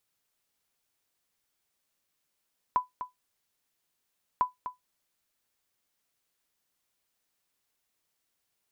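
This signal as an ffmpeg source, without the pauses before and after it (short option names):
-f lavfi -i "aevalsrc='0.158*(sin(2*PI*999*mod(t,1.65))*exp(-6.91*mod(t,1.65)/0.15)+0.282*sin(2*PI*999*max(mod(t,1.65)-0.25,0))*exp(-6.91*max(mod(t,1.65)-0.25,0)/0.15))':d=3.3:s=44100"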